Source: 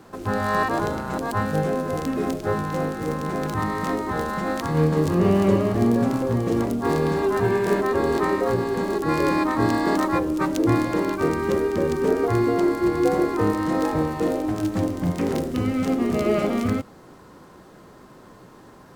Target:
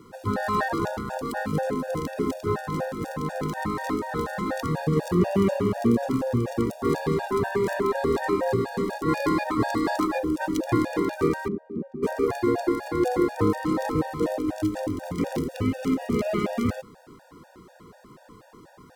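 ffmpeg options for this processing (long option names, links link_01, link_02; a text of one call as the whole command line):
ffmpeg -i in.wav -filter_complex "[0:a]asettb=1/sr,asplit=3[link_01][link_02][link_03];[link_01]atrim=end=11.484[link_04];[link_02]atrim=start=11.48:end=12.03,asetpts=PTS-STARTPTS,afade=type=in:duration=0.004:curve=qsin,afade=type=out:start_time=0.546:duration=0.004:curve=qsin,bandpass=frequency=220:width_type=q:width=2.5:csg=0[link_05];[link_03]atrim=start=12.026[link_06];[link_04][link_05]acrossfade=duration=0.004:curve1=hsin:curve2=qsin[link_07];[link_07][link_06]acrossfade=duration=0.004:curve1=qsin:curve2=hsin,afftfilt=real='re*gt(sin(2*PI*4.1*pts/sr)*(1-2*mod(floor(b*sr/1024/480),2)),0)':imag='im*gt(sin(2*PI*4.1*pts/sr)*(1-2*mod(floor(b*sr/1024/480),2)),0)':win_size=1024:overlap=0.75" out.wav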